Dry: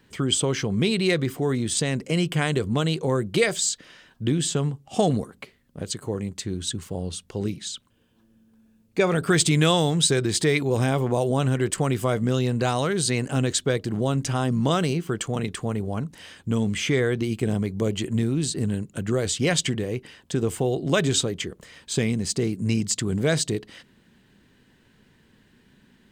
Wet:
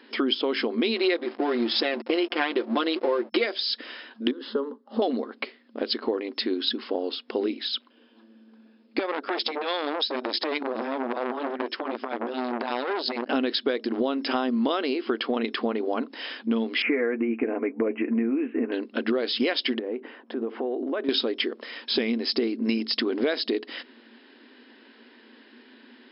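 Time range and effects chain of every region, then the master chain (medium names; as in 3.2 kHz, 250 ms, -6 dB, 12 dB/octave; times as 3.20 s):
0.96–3.45 s: comb 5.7 ms, depth 78% + hysteresis with a dead band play -27.5 dBFS
4.31–5.02 s: careless resampling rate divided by 4×, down none, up zero stuff + tape spacing loss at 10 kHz 40 dB + static phaser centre 480 Hz, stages 8
6.89–7.73 s: upward compressor, threshold -41 dBFS + distance through air 110 m
8.99–13.29 s: transient shaper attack -5 dB, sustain -12 dB + compression 16:1, threshold -24 dBFS + transformer saturation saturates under 2.4 kHz
16.82–18.72 s: steep low-pass 2.6 kHz 96 dB/octave + comb of notches 190 Hz
19.79–21.09 s: low-pass 1.4 kHz + compression 5:1, threshold -33 dBFS
whole clip: FFT band-pass 220–5300 Hz; compression, threshold -31 dBFS; trim +9 dB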